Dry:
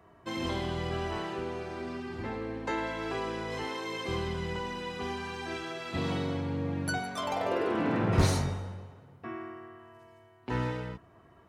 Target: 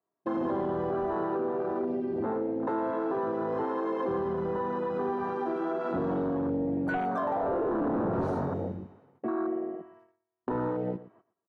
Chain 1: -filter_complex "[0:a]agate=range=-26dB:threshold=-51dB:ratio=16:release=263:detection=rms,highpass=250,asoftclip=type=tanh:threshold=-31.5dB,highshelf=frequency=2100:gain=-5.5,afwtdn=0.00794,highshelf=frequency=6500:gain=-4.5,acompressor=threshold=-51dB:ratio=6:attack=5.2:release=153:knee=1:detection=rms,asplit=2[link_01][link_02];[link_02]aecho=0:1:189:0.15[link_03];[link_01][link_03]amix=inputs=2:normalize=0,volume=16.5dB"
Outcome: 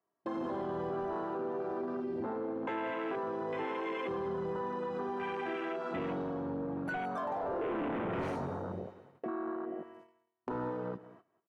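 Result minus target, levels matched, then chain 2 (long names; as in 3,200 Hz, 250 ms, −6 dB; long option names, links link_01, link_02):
echo 70 ms late; downward compressor: peak gain reduction +7 dB; 2,000 Hz band +5.0 dB
-filter_complex "[0:a]agate=range=-26dB:threshold=-51dB:ratio=16:release=263:detection=rms,highpass=250,asoftclip=type=tanh:threshold=-31.5dB,highshelf=frequency=2100:gain=-16,afwtdn=0.00794,highshelf=frequency=6500:gain=-4.5,acompressor=threshold=-43dB:ratio=6:attack=5.2:release=153:knee=1:detection=rms,asplit=2[link_01][link_02];[link_02]aecho=0:1:119:0.15[link_03];[link_01][link_03]amix=inputs=2:normalize=0,volume=16.5dB"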